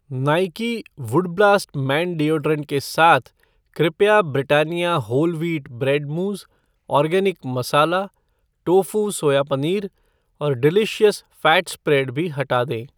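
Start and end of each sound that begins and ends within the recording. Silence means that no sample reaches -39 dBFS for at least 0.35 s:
3.76–6.43
6.89–8.07
8.67–9.88

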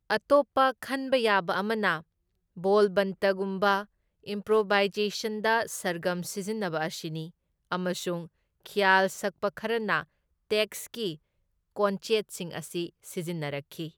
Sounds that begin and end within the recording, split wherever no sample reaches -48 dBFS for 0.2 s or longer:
2.57–3.85
4.26–7.3
7.71–8.27
8.66–10.04
10.51–11.16

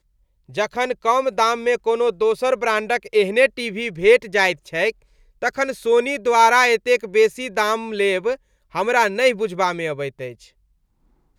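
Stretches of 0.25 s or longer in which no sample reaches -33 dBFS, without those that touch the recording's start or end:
4.91–5.42
8.35–8.75

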